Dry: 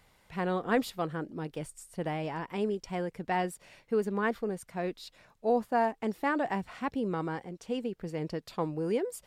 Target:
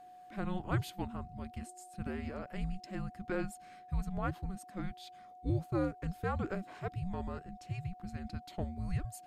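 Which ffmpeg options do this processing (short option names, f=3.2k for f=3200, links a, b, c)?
-af "afreqshift=-380,aeval=exprs='val(0)+0.00501*sin(2*PI*730*n/s)':c=same,volume=-5.5dB"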